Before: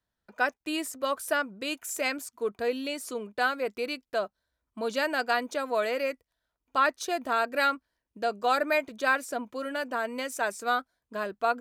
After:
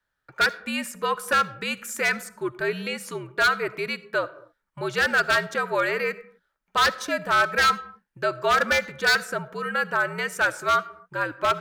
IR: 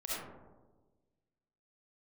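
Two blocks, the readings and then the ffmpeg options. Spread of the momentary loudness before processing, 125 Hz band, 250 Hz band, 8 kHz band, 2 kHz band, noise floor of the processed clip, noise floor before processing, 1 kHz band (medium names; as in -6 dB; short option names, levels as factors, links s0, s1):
8 LU, no reading, +1.0 dB, +4.0 dB, +8.0 dB, -79 dBFS, -85 dBFS, +4.5 dB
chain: -filter_complex "[0:a]equalizer=f=1700:t=o:w=1.1:g=11.5,afreqshift=-75,aeval=exprs='0.211*(abs(mod(val(0)/0.211+3,4)-2)-1)':c=same,asplit=2[s0][s1];[1:a]atrim=start_sample=2205,afade=t=out:st=0.32:d=0.01,atrim=end_sample=14553[s2];[s1][s2]afir=irnorm=-1:irlink=0,volume=0.112[s3];[s0][s3]amix=inputs=2:normalize=0"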